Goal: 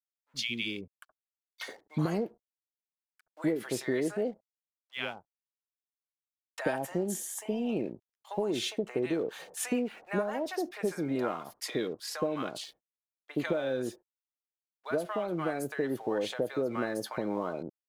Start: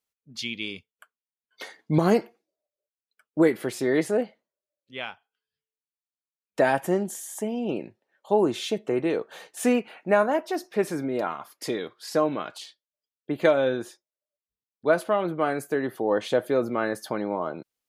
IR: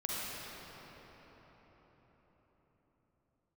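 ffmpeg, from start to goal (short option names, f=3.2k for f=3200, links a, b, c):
-filter_complex "[0:a]acompressor=threshold=-26dB:ratio=6,aeval=exprs='sgn(val(0))*max(abs(val(0))-0.00106,0)':c=same,acrossover=split=820[a][b];[a]adelay=70[c];[c][b]amix=inputs=2:normalize=0"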